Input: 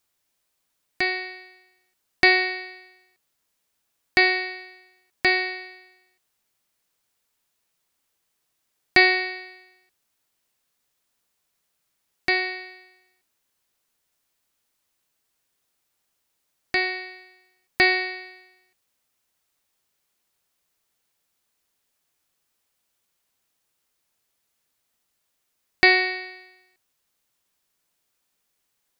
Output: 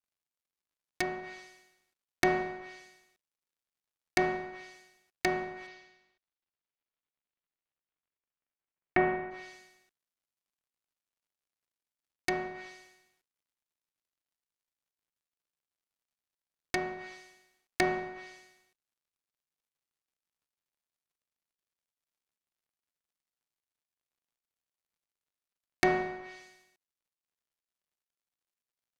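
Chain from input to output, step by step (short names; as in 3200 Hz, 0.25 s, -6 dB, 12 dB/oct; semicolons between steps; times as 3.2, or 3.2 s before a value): switching dead time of 0.14 ms; 5.66–9.3 LPF 5200 Hz -> 2500 Hz 24 dB/oct; treble ducked by the level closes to 1100 Hz, closed at -27 dBFS; gain -2 dB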